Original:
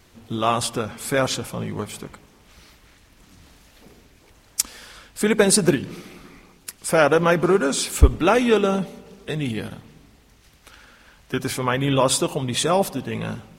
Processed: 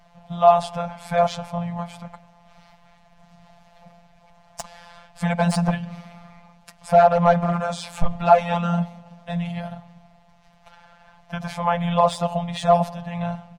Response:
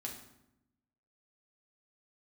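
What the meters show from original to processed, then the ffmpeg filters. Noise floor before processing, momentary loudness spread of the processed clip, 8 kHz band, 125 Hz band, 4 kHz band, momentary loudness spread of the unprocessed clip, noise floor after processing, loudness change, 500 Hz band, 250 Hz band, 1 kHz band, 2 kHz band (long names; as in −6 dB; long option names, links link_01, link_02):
−55 dBFS, 19 LU, −15.5 dB, 0.0 dB, −8.5 dB, 17 LU, −55 dBFS, −0.5 dB, 0.0 dB, −3.0 dB, +5.0 dB, −6.5 dB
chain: -af "afftfilt=real='hypot(re,im)*cos(PI*b)':imag='0':win_size=1024:overlap=0.75,aeval=exprs='clip(val(0),-1,0.299)':channel_layout=same,firequalizer=gain_entry='entry(200,0);entry(340,-30);entry(630,11);entry(1300,-4);entry(11000,-20)':delay=0.05:min_phase=1,volume=4dB"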